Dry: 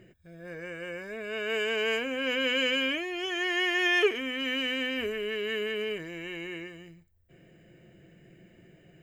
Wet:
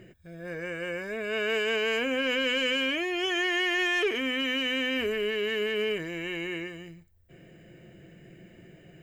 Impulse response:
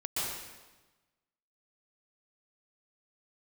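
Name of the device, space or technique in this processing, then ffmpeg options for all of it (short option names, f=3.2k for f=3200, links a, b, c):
soft clipper into limiter: -af "asoftclip=type=tanh:threshold=-18.5dB,alimiter=level_in=1dB:limit=-24dB:level=0:latency=1:release=72,volume=-1dB,volume=4.5dB"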